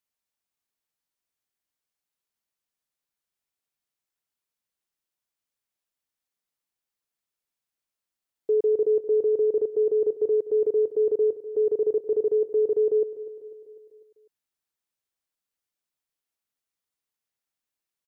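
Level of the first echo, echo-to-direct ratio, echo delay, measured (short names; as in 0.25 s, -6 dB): -15.0 dB, -13.5 dB, 0.249 s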